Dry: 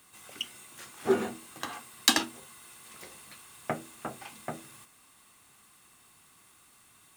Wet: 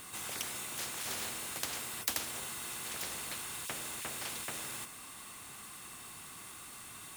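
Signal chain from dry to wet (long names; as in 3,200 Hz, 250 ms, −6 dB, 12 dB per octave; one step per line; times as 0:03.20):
every bin compressed towards the loudest bin 10 to 1
level −7.5 dB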